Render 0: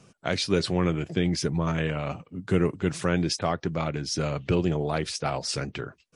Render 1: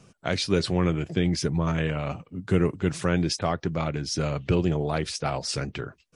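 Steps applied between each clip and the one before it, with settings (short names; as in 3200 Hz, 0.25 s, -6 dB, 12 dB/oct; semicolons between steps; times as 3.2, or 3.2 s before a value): low shelf 73 Hz +7.5 dB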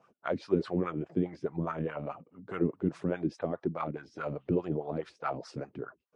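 wah 4.8 Hz 230–1300 Hz, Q 2.6; gain +1.5 dB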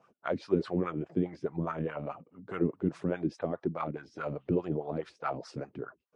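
nothing audible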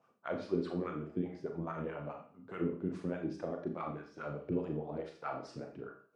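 reverb RT60 0.45 s, pre-delay 27 ms, DRR 2.5 dB; gain -7 dB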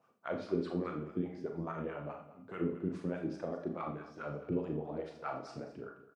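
echo 0.212 s -15 dB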